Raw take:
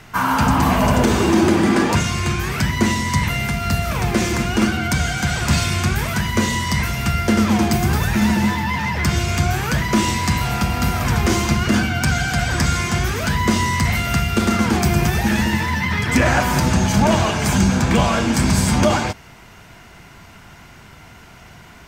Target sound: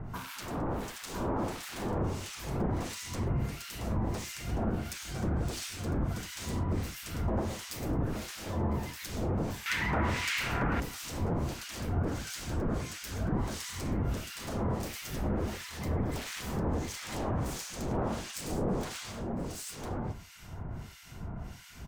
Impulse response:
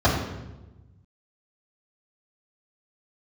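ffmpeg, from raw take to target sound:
-filter_complex "[0:a]lowshelf=f=200:g=9.5,aeval=exprs='0.211*(abs(mod(val(0)/0.211+3,4)-2)-1)':c=same,acompressor=threshold=0.0178:ratio=2.5,aecho=1:1:1004:0.708,acrossover=split=1500[s0][s1];[s0]aeval=exprs='val(0)*(1-1/2+1/2*cos(2*PI*1.5*n/s))':c=same[s2];[s1]aeval=exprs='val(0)*(1-1/2-1/2*cos(2*PI*1.5*n/s))':c=same[s3];[s2][s3]amix=inputs=2:normalize=0,asetnsamples=n=441:p=0,asendcmd='9.66 equalizer g 10.5;10.8 equalizer g -6.5',equalizer=f=2000:t=o:w=1.8:g=-6.5"

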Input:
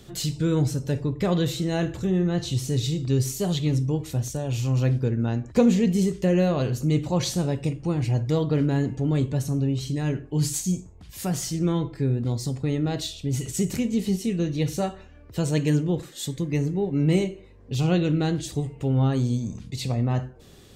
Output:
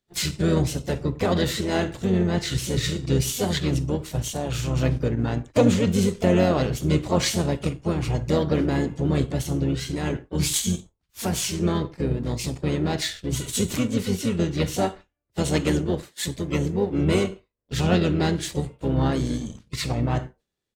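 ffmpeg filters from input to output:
-filter_complex "[0:a]asplit=4[s0][s1][s2][s3];[s1]asetrate=22050,aresample=44100,atempo=2,volume=0.631[s4];[s2]asetrate=52444,aresample=44100,atempo=0.840896,volume=0.316[s5];[s3]asetrate=55563,aresample=44100,atempo=0.793701,volume=0.282[s6];[s0][s4][s5][s6]amix=inputs=4:normalize=0,lowshelf=f=260:g=-8,asplit=2[s7][s8];[s8]aeval=exprs='sgn(val(0))*max(abs(val(0))-0.01,0)':c=same,volume=0.531[s9];[s7][s9]amix=inputs=2:normalize=0,agate=range=0.0224:threshold=0.0282:ratio=3:detection=peak"

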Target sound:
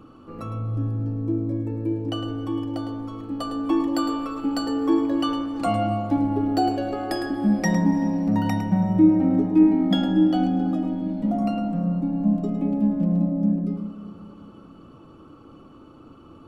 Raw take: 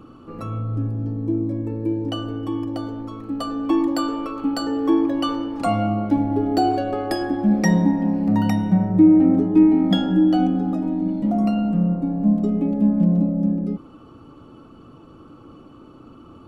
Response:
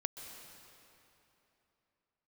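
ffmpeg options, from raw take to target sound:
-filter_complex "[0:a]bandreject=f=60:t=h:w=6,bandreject=f=120:t=h:w=6,bandreject=f=180:t=h:w=6,bandreject=f=240:t=h:w=6,bandreject=f=300:t=h:w=6,bandreject=f=360:t=h:w=6,bandreject=f=420:t=h:w=6,asplit=2[s0][s1];[1:a]atrim=start_sample=2205,adelay=107[s2];[s1][s2]afir=irnorm=-1:irlink=0,volume=0.376[s3];[s0][s3]amix=inputs=2:normalize=0,volume=0.75"

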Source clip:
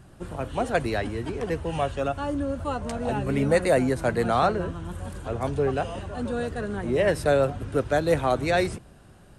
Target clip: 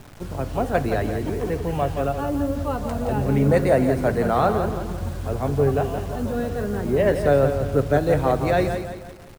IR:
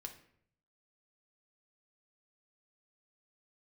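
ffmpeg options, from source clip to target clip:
-filter_complex "[0:a]highshelf=f=2000:g=-10,acrusher=bits=7:mix=0:aa=0.000001,aecho=1:1:171|342|513|684|855:0.398|0.167|0.0702|0.0295|0.0124,asplit=2[s0][s1];[1:a]atrim=start_sample=2205,lowshelf=f=110:g=8.5[s2];[s1][s2]afir=irnorm=-1:irlink=0,volume=0.841[s3];[s0][s3]amix=inputs=2:normalize=0"

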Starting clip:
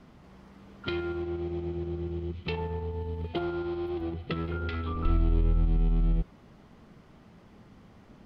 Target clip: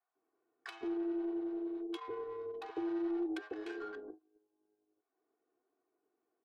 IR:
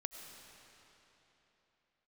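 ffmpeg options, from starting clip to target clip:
-filter_complex "[0:a]acompressor=threshold=0.0112:ratio=4,afreqshift=-83,asoftclip=type=tanh:threshold=0.0188,highpass=f=260:w=0.5412,highpass=f=260:w=1.3066,agate=range=0.0501:threshold=0.00282:ratio=16:detection=peak,adynamicsmooth=sensitivity=7.5:basefreq=760,asetrate=56448,aresample=44100,aecho=1:1:2.7:0.87,acrossover=split=730[s0][s1];[s0]adelay=150[s2];[s2][s1]amix=inputs=2:normalize=0,volume=1.78"

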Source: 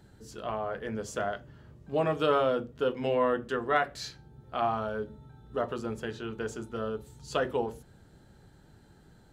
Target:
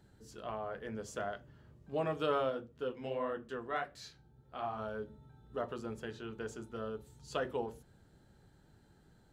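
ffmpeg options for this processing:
-filter_complex "[0:a]asplit=3[s0][s1][s2];[s0]afade=t=out:st=2.49:d=0.02[s3];[s1]flanger=delay=9.4:depth=9.3:regen=-34:speed=1.5:shape=triangular,afade=t=in:st=2.49:d=0.02,afade=t=out:st=4.78:d=0.02[s4];[s2]afade=t=in:st=4.78:d=0.02[s5];[s3][s4][s5]amix=inputs=3:normalize=0,volume=0.447"

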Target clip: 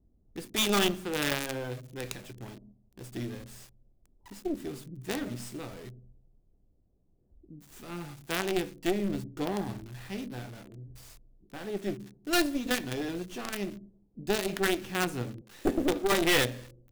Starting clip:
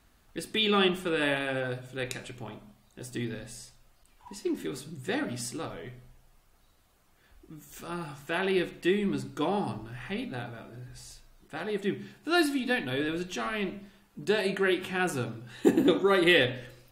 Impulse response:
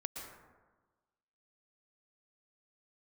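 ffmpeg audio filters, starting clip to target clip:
-filter_complex "[0:a]asettb=1/sr,asplit=3[s0][s1][s2];[s0]atrim=end=15.414[s3];[s1]atrim=start=15.41:end=16.12,asetpts=PTS-STARTPTS,afade=t=in:d=0.004:c=qsin,afade=t=out:st=0.706:d=0.004:c=qsin,highpass=290[s4];[s2]atrim=start=16.116[s5];[s3][s4]acrossfade=d=0.004:c1=hsin:c2=qsin[s6];[s6][s5]acrossfade=d=0.004:c1=qsin:c2=hsin,acrossover=split=500[s7][s8];[s8]acrusher=bits=5:dc=4:mix=0:aa=0.000001[s9];[s7][s9]amix=inputs=2:normalize=0,aeval=exprs='(tanh(14.1*val(0)+0.8)-tanh(0.8))/14.1':c=same,volume=1.58"

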